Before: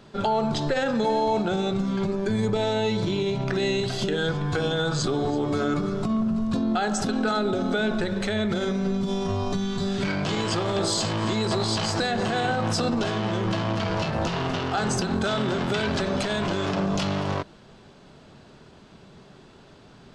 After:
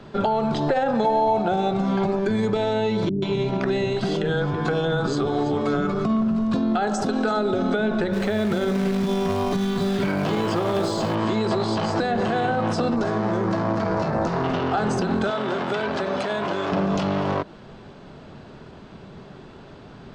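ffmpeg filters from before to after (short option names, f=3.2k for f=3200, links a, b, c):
-filter_complex "[0:a]asettb=1/sr,asplit=3[a][b][c];[a]atrim=end=0.684[d];[b]atrim=start=0.68:end=2.19,asetpts=PTS-STARTPTS,afade=t=in:d=0.004:c=qsin,afade=t=out:st=1.506:d=0.004:c=qsin,equalizer=f=750:t=o:w=0.61:g=11[e];[c]atrim=start=2.186[f];[d][e]acrossfade=d=0.004:c1=hsin:c2=qsin[g];[g][f]acrossfade=d=0.004:c1=qsin:c2=hsin,asettb=1/sr,asplit=3[h][i][j];[h]atrim=end=3.094[k];[i]atrim=start=3.09:end=6.05,asetpts=PTS-STARTPTS,afade=t=in:d=0.004:c=qsin,afade=t=out:st=2.956:d=0.004:c=qsin,acrossover=split=360[l][m];[m]adelay=130[n];[l][n]amix=inputs=2:normalize=0,atrim=end_sample=130536[o];[j]atrim=start=6.046[p];[k][o]acrossfade=d=0.004:c1=hsin:c2=qsin[q];[q][p]acrossfade=d=0.004:c1=qsin:c2=hsin,asettb=1/sr,asplit=3[r][s][t];[r]atrim=end=6.874[u];[s]atrim=start=6.87:end=7.53,asetpts=PTS-STARTPTS,afade=t=in:d=0.004:c=qsin,afade=t=out:st=0.656:d=0.004:c=qsin,bass=f=250:g=-6,treble=f=4k:g=9[v];[t]atrim=start=7.526[w];[u][v]acrossfade=d=0.004:c1=hsin:c2=qsin[x];[x][w]acrossfade=d=0.004:c1=qsin:c2=hsin,asettb=1/sr,asplit=3[y][z][aa];[y]atrim=end=8.134[ab];[z]atrim=start=8.13:end=11.15,asetpts=PTS-STARTPTS,afade=t=in:d=0.004:c=qsin,afade=t=out:st=3.016:d=0.004:c=qsin,acrusher=bits=3:mode=log:mix=0:aa=0.000001[ac];[aa]atrim=start=11.146[ad];[ab][ac]acrossfade=d=0.004:c1=hsin:c2=qsin[ae];[ae][ad]acrossfade=d=0.004:c1=qsin:c2=hsin,asettb=1/sr,asplit=3[af][ag][ah];[af]atrim=end=12.964[ai];[ag]atrim=start=12.96:end=14.44,asetpts=PTS-STARTPTS,afade=t=in:d=0.004:c=qsin,afade=t=out:st=1.476:d=0.004:c=qsin,equalizer=f=3k:w=1.8:g=-14[aj];[ah]atrim=start=14.436[ak];[ai][aj]acrossfade=d=0.004:c1=hsin:c2=qsin[al];[al][ak]acrossfade=d=0.004:c1=qsin:c2=hsin,asettb=1/sr,asplit=3[am][an][ao];[am]atrim=end=15.304[ap];[an]atrim=start=15.3:end=16.72,asetpts=PTS-STARTPTS,afade=t=in:d=0.004:c=qsin,afade=t=out:st=1.416:d=0.004:c=qsin,highpass=f=640:p=1[aq];[ao]atrim=start=16.716[ar];[ap][aq]acrossfade=d=0.004:c1=hsin:c2=qsin[as];[as][ar]acrossfade=d=0.004:c1=qsin:c2=hsin,lowpass=f=2.3k:p=1,acrossover=split=160|1300[at][au][av];[at]acompressor=threshold=-44dB:ratio=4[aw];[au]acompressor=threshold=-28dB:ratio=4[ax];[av]acompressor=threshold=-42dB:ratio=4[ay];[aw][ax][ay]amix=inputs=3:normalize=0,volume=7.5dB"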